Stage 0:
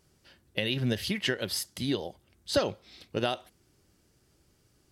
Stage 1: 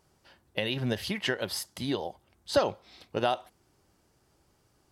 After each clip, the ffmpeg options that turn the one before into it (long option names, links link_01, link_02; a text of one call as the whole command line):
ffmpeg -i in.wav -af "equalizer=frequency=880:width=1.1:gain=9.5,volume=-2.5dB" out.wav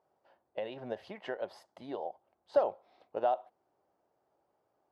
ffmpeg -i in.wav -af "bandpass=frequency=670:width_type=q:width=2.1:csg=0" out.wav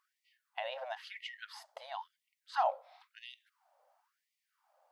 ffmpeg -i in.wav -af "afftfilt=real='re*gte(b*sr/1024,470*pow(1900/470,0.5+0.5*sin(2*PI*0.98*pts/sr)))':imag='im*gte(b*sr/1024,470*pow(1900/470,0.5+0.5*sin(2*PI*0.98*pts/sr)))':win_size=1024:overlap=0.75,volume=7dB" out.wav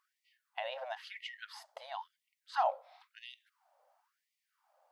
ffmpeg -i in.wav -af anull out.wav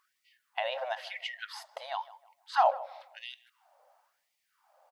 ffmpeg -i in.wav -filter_complex "[0:a]asplit=2[link_01][link_02];[link_02]adelay=156,lowpass=frequency=1400:poles=1,volume=-16dB,asplit=2[link_03][link_04];[link_04]adelay=156,lowpass=frequency=1400:poles=1,volume=0.38,asplit=2[link_05][link_06];[link_06]adelay=156,lowpass=frequency=1400:poles=1,volume=0.38[link_07];[link_01][link_03][link_05][link_07]amix=inputs=4:normalize=0,volume=6.5dB" out.wav